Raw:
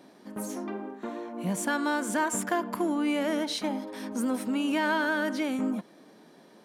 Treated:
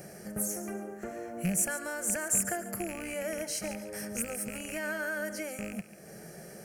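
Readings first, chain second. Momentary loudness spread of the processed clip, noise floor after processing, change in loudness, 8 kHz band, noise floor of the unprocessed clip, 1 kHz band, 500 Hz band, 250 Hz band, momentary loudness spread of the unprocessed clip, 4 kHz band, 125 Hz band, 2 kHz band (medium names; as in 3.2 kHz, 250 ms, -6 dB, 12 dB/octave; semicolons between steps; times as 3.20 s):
13 LU, -49 dBFS, -3.5 dB, +6.5 dB, -56 dBFS, -11.0 dB, -4.5 dB, -9.5 dB, 11 LU, -8.5 dB, +0.5 dB, -5.0 dB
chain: rattle on loud lows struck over -32 dBFS, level -23 dBFS; compression 2:1, threshold -50 dBFS, peak gain reduction 15 dB; tone controls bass +15 dB, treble +13 dB; static phaser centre 1 kHz, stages 6; on a send: thinning echo 141 ms, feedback 29%, level -13 dB; on the sum: trim +8.5 dB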